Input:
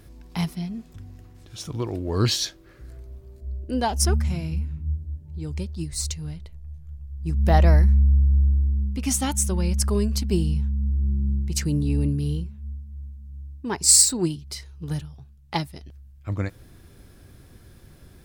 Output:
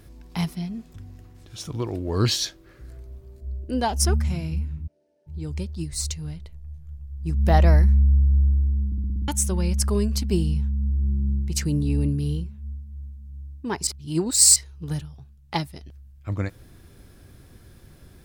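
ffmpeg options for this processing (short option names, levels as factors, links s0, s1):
-filter_complex "[0:a]asplit=3[s0][s1][s2];[s0]afade=t=out:st=4.86:d=0.02[s3];[s1]highpass=f=440:w=0.5412,highpass=f=440:w=1.3066,equalizer=f=610:t=q:w=4:g=10,equalizer=f=1100:t=q:w=4:g=-8,equalizer=f=3400:t=q:w=4:g=-4,equalizer=f=7300:t=q:w=4:g=-10,lowpass=f=8100:w=0.5412,lowpass=f=8100:w=1.3066,afade=t=in:st=4.86:d=0.02,afade=t=out:st=5.26:d=0.02[s4];[s2]afade=t=in:st=5.26:d=0.02[s5];[s3][s4][s5]amix=inputs=3:normalize=0,asplit=10[s6][s7][s8][s9][s10][s11][s12][s13][s14][s15];[s6]atrim=end=8.922[s16];[s7]atrim=start=8.858:end=8.922[s17];[s8]atrim=start=8.858:end=8.922[s18];[s9]atrim=start=8.858:end=8.922[s19];[s10]atrim=start=8.858:end=8.922[s20];[s11]atrim=start=8.858:end=8.922[s21];[s12]atrim=start=8.858:end=8.922[s22];[s13]atrim=start=9.278:end=13.872[s23];[s14]atrim=start=13.868:end=14.562,asetpts=PTS-STARTPTS,areverse[s24];[s15]atrim=start=14.558[s25];[s16][s17]acrossfade=d=0.004:c1=hsin:c2=hsin[s26];[s26][s18]acrossfade=d=0.004:c1=hsin:c2=hsin[s27];[s27][s19]acrossfade=d=0.004:c1=hsin:c2=hsin[s28];[s28][s20]acrossfade=d=0.004:c1=hsin:c2=hsin[s29];[s29][s21]acrossfade=d=0.004:c1=hsin:c2=hsin[s30];[s30][s22]acrossfade=d=0.004:c1=hsin:c2=hsin[s31];[s31][s23]acrossfade=d=0.004:c1=hsin:c2=hsin[s32];[s32][s24]acrossfade=d=0.004:c1=hsin:c2=hsin[s33];[s33][s25]acrossfade=d=0.004:c1=hsin:c2=hsin"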